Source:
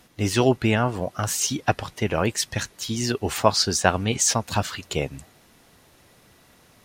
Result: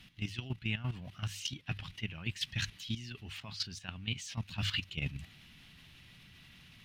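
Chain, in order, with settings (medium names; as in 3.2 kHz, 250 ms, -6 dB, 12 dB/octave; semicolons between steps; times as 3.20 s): companding laws mixed up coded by mu; hum notches 50/100 Hz; reverse; compression 6:1, threshold -30 dBFS, peak gain reduction 18 dB; reverse; FFT filter 170 Hz 0 dB, 490 Hz -21 dB, 1.4 kHz -9 dB, 2.9 kHz +5 dB, 7.2 kHz -14 dB; level held to a coarse grid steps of 12 dB; trim +3 dB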